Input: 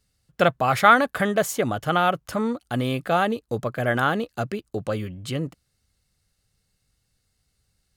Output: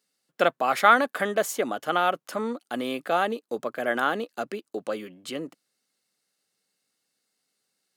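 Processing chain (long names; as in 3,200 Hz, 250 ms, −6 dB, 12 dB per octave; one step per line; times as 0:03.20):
high-pass filter 240 Hz 24 dB per octave
level −2.5 dB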